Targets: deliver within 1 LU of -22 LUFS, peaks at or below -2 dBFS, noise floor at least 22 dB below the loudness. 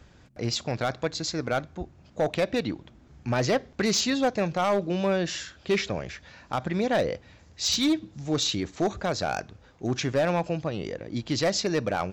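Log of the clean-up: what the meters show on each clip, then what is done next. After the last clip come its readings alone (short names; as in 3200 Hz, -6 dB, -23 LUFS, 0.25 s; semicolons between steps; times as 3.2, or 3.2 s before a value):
clipped 1.1%; flat tops at -18.0 dBFS; loudness -27.5 LUFS; peak -18.0 dBFS; loudness target -22.0 LUFS
-> clip repair -18 dBFS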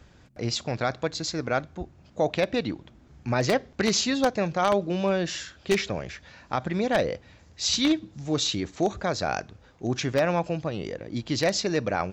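clipped 0.0%; loudness -27.0 LUFS; peak -9.0 dBFS; loudness target -22.0 LUFS
-> gain +5 dB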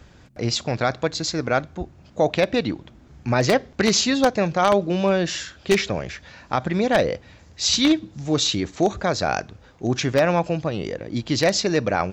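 loudness -22.0 LUFS; peak -4.0 dBFS; noise floor -50 dBFS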